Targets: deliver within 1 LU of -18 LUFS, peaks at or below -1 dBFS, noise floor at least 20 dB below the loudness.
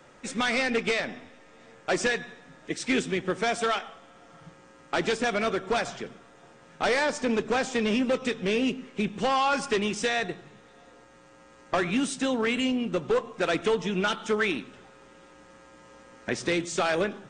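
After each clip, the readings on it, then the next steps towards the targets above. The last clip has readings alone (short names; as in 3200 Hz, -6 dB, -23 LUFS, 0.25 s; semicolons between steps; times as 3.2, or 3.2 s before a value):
loudness -27.5 LUFS; peak -15.0 dBFS; loudness target -18.0 LUFS
-> gain +9.5 dB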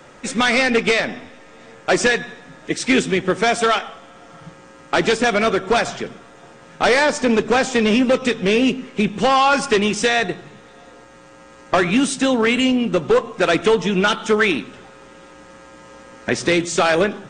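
loudness -18.0 LUFS; peak -5.5 dBFS; noise floor -45 dBFS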